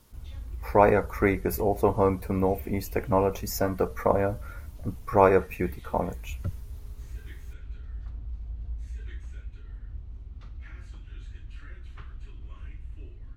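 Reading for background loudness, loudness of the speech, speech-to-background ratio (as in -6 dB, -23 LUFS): -42.5 LUFS, -25.5 LUFS, 17.0 dB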